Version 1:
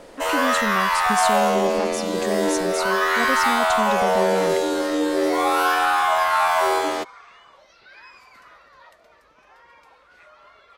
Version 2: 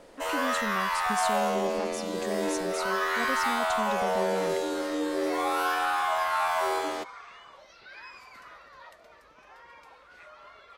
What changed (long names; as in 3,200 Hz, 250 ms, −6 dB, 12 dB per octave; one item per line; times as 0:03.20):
speech −8.0 dB
first sound −8.0 dB